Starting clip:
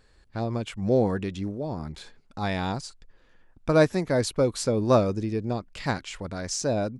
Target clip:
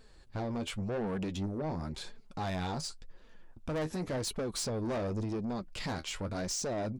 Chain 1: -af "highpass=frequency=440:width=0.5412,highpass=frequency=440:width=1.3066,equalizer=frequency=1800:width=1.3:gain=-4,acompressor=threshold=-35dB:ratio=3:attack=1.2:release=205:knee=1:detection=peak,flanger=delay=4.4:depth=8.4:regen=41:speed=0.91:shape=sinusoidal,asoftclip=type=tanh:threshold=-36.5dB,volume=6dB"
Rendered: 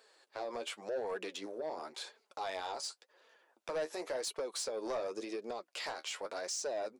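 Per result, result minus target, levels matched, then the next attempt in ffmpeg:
downward compressor: peak gain reduction +4 dB; 500 Hz band +3.0 dB
-af "highpass=frequency=440:width=0.5412,highpass=frequency=440:width=1.3066,equalizer=frequency=1800:width=1.3:gain=-4,acompressor=threshold=-27.5dB:ratio=3:attack=1.2:release=205:knee=1:detection=peak,flanger=delay=4.4:depth=8.4:regen=41:speed=0.91:shape=sinusoidal,asoftclip=type=tanh:threshold=-36.5dB,volume=6dB"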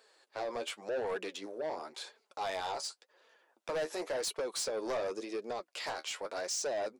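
500 Hz band +3.0 dB
-af "equalizer=frequency=1800:width=1.3:gain=-4,acompressor=threshold=-27.5dB:ratio=3:attack=1.2:release=205:knee=1:detection=peak,flanger=delay=4.4:depth=8.4:regen=41:speed=0.91:shape=sinusoidal,asoftclip=type=tanh:threshold=-36.5dB,volume=6dB"

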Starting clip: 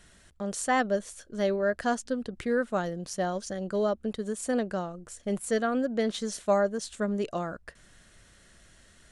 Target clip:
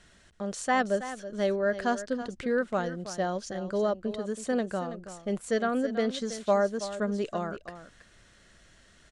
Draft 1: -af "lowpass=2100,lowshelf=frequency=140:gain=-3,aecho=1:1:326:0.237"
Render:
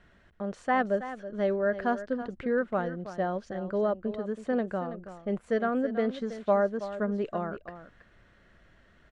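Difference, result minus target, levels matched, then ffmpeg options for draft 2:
8,000 Hz band −18.5 dB
-af "lowpass=7000,lowshelf=frequency=140:gain=-3,aecho=1:1:326:0.237"

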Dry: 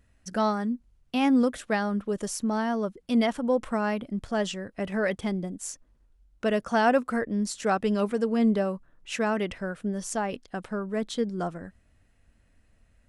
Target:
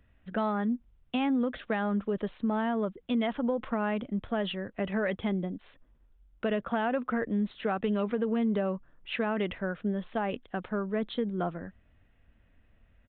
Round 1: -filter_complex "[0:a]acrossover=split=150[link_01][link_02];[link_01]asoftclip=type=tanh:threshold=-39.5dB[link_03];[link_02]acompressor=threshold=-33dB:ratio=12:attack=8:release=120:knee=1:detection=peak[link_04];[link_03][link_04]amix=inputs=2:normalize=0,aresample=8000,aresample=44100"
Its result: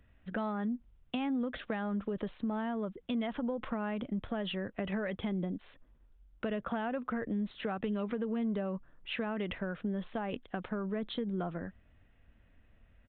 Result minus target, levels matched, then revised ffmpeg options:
downward compressor: peak gain reduction +7 dB
-filter_complex "[0:a]acrossover=split=150[link_01][link_02];[link_01]asoftclip=type=tanh:threshold=-39.5dB[link_03];[link_02]acompressor=threshold=-25.5dB:ratio=12:attack=8:release=120:knee=1:detection=peak[link_04];[link_03][link_04]amix=inputs=2:normalize=0,aresample=8000,aresample=44100"

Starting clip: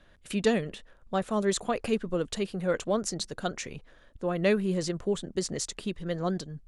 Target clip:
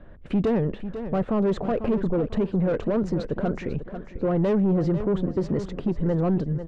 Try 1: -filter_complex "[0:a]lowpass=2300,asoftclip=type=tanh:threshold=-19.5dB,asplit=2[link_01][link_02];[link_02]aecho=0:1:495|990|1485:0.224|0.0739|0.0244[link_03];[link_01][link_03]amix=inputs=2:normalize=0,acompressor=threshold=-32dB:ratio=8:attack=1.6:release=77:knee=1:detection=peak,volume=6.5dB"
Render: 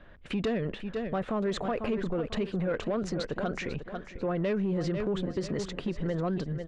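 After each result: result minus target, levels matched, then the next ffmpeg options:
soft clipping: distortion −9 dB; 1,000 Hz band +3.0 dB
-filter_complex "[0:a]lowpass=2300,asoftclip=type=tanh:threshold=-28.5dB,asplit=2[link_01][link_02];[link_02]aecho=0:1:495|990|1485:0.224|0.0739|0.0244[link_03];[link_01][link_03]amix=inputs=2:normalize=0,acompressor=threshold=-32dB:ratio=8:attack=1.6:release=77:knee=1:detection=peak,volume=6.5dB"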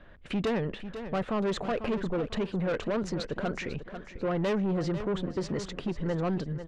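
1,000 Hz band +4.0 dB
-filter_complex "[0:a]lowpass=2300,asoftclip=type=tanh:threshold=-28.5dB,asplit=2[link_01][link_02];[link_02]aecho=0:1:495|990|1485:0.224|0.0739|0.0244[link_03];[link_01][link_03]amix=inputs=2:normalize=0,acompressor=threshold=-32dB:ratio=8:attack=1.6:release=77:knee=1:detection=peak,tiltshelf=frequency=1200:gain=8,volume=6.5dB"

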